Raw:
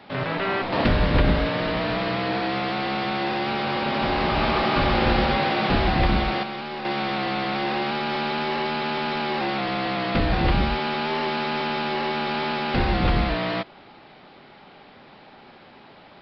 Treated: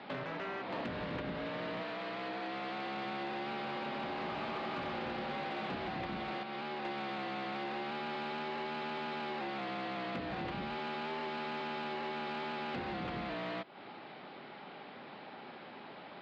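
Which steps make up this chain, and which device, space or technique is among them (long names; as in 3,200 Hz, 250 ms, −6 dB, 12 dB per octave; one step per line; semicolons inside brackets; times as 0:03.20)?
AM radio (band-pass filter 160–3,900 Hz; downward compressor 5 to 1, threshold −36 dBFS, peak gain reduction 16.5 dB; soft clipping −28.5 dBFS, distortion −23 dB)
0:01.82–0:02.94: high-pass filter 380 Hz → 140 Hz 6 dB per octave
level −1 dB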